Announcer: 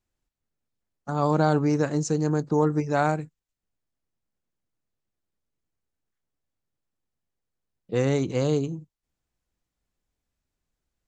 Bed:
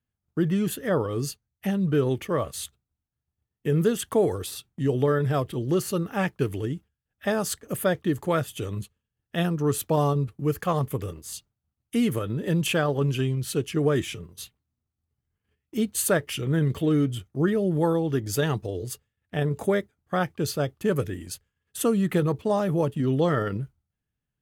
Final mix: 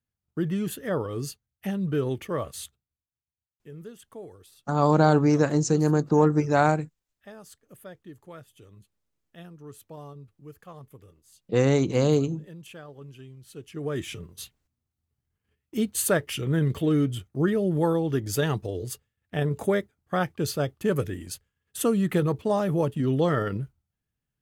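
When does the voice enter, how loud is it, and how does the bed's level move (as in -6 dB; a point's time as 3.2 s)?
3.60 s, +2.5 dB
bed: 2.6 s -3.5 dB
3.54 s -20 dB
13.41 s -20 dB
14.19 s -0.5 dB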